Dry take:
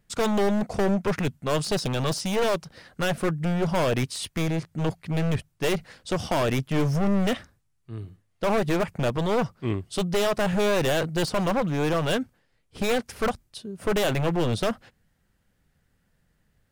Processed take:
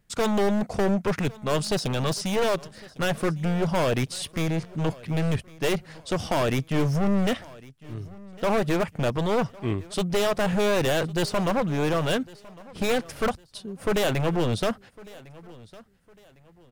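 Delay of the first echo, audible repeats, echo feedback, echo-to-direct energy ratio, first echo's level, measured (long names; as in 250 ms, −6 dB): 1,105 ms, 2, 34%, −21.0 dB, −21.5 dB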